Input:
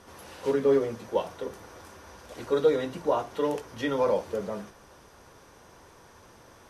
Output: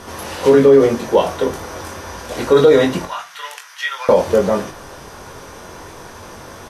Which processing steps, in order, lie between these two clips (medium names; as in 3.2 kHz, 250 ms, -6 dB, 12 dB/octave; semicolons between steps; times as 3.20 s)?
3.05–4.09 s: ladder high-pass 1.2 kHz, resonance 25%; doubling 22 ms -6 dB; on a send at -17 dB: reverberation RT60 0.40 s, pre-delay 3 ms; on the sum: loudness maximiser +17.5 dB; trim -1 dB